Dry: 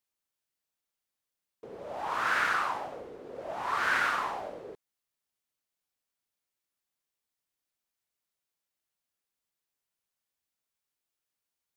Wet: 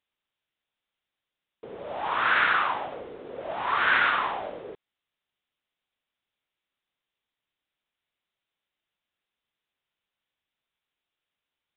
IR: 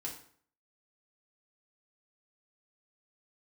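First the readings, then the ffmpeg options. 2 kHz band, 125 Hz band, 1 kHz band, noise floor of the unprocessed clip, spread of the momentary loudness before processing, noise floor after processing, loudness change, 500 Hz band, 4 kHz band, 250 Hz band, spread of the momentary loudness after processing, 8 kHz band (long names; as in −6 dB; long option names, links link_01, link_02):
+5.5 dB, +3.5 dB, +4.5 dB, below −85 dBFS, 19 LU, below −85 dBFS, +5.5 dB, +4.0 dB, +7.0 dB, +3.5 dB, 19 LU, below −25 dB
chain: -af "aemphasis=mode=production:type=75fm,aresample=8000,aresample=44100,volume=4.5dB"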